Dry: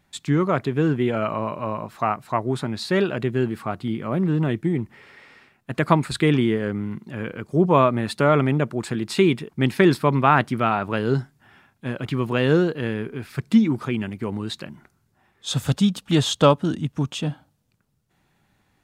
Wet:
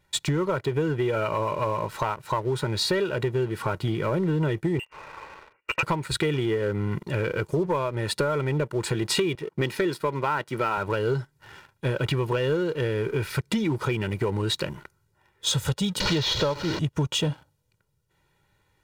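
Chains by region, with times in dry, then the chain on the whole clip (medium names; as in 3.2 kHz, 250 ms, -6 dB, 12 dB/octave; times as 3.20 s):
4.79–5.83 s: high-pass 390 Hz + frequency inversion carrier 3 kHz
9.35–10.78 s: high-pass 170 Hz + tape noise reduction on one side only decoder only
16.00–16.79 s: one-bit delta coder 32 kbps, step -23.5 dBFS + peaking EQ 4.2 kHz +7.5 dB 0.25 oct
whole clip: comb 2.1 ms, depth 73%; compression 16:1, threshold -28 dBFS; waveshaping leveller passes 2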